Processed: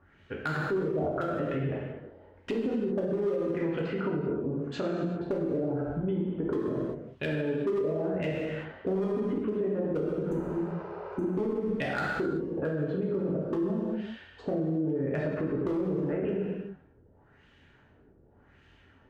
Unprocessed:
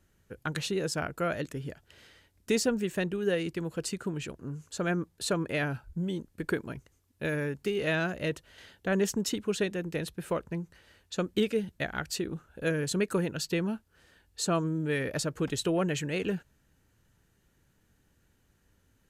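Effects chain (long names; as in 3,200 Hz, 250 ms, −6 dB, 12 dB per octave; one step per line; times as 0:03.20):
treble cut that deepens with the level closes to 400 Hz, closed at −26 dBFS
hum removal 57.6 Hz, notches 3
auto-filter low-pass sine 0.87 Hz 410–3,100 Hz
low-shelf EQ 73 Hz −9 dB
hard clipping −22.5 dBFS, distortion −16 dB
healed spectral selection 0:10.33–0:11.29, 380–5,900 Hz before
reverb whose tail is shaped and stops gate 420 ms falling, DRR −3.5 dB
downward compressor 2 to 1, threshold −32 dBFS, peak gain reduction 8 dB
brickwall limiter −27 dBFS, peak gain reduction 7 dB
level +5 dB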